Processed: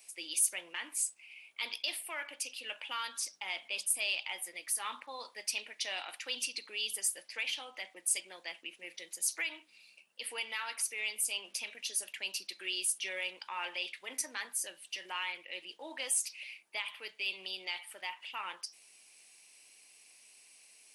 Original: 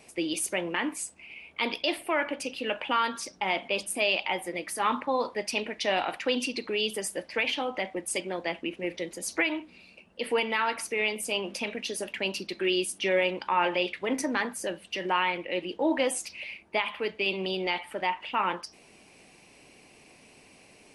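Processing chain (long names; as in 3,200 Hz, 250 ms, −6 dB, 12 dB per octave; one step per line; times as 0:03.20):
first difference
in parallel at −11 dB: soft clipping −30.5 dBFS, distortion −12 dB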